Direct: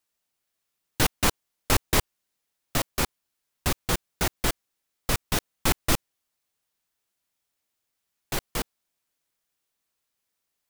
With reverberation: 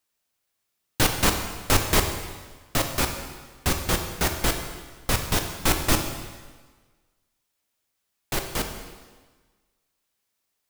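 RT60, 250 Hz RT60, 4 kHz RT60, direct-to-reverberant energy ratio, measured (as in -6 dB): 1.4 s, 1.4 s, 1.3 s, 4.5 dB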